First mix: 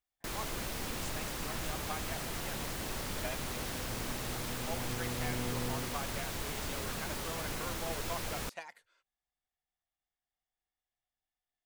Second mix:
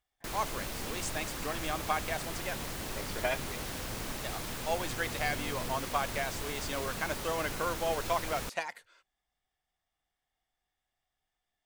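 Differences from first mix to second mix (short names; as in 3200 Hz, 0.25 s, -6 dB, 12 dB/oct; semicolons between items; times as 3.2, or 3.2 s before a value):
speech +10.0 dB; second sound -6.5 dB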